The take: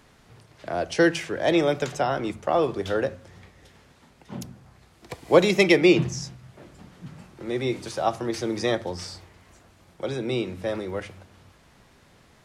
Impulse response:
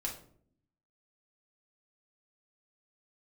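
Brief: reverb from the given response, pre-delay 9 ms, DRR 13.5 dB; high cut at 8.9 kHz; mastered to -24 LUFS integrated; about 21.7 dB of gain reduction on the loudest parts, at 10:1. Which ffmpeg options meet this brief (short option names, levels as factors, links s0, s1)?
-filter_complex "[0:a]lowpass=8900,acompressor=threshold=0.0224:ratio=10,asplit=2[s0][s1];[1:a]atrim=start_sample=2205,adelay=9[s2];[s1][s2]afir=irnorm=-1:irlink=0,volume=0.188[s3];[s0][s3]amix=inputs=2:normalize=0,volume=5.31"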